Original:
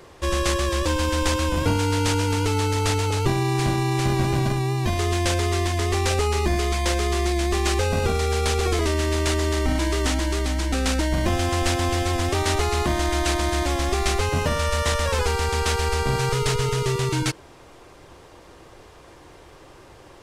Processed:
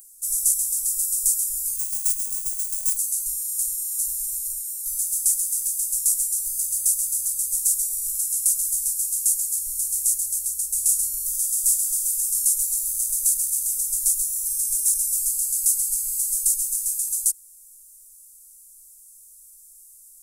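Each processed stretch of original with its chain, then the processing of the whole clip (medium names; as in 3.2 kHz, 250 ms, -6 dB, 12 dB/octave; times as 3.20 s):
1.76–2.97 s: bass shelf 98 Hz +9 dB + decimation joined by straight lines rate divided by 3×
10.69–12.45 s: inverse Chebyshev band-stop 130–450 Hz, stop band 50 dB + flutter echo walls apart 5.4 m, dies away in 0.29 s
whole clip: inverse Chebyshev band-stop 140–2300 Hz, stop band 70 dB; RIAA curve recording; trim +6.5 dB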